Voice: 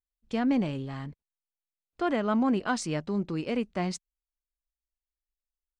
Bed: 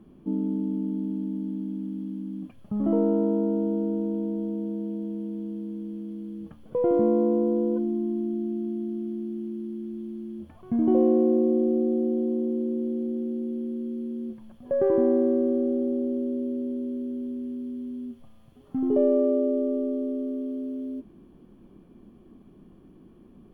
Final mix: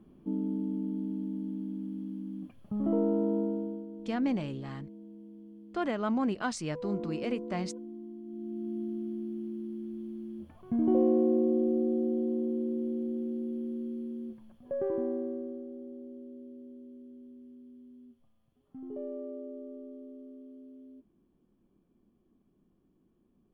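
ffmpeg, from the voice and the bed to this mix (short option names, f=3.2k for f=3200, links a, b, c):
-filter_complex "[0:a]adelay=3750,volume=-4dB[a];[1:a]volume=7dB,afade=t=out:st=3.39:d=0.47:silence=0.266073,afade=t=in:st=8.24:d=0.55:silence=0.251189,afade=t=out:st=13.82:d=1.84:silence=0.211349[b];[a][b]amix=inputs=2:normalize=0"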